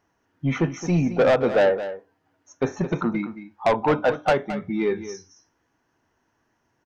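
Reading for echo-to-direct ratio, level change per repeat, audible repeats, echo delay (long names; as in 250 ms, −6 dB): −12.5 dB, repeats not evenly spaced, 1, 218 ms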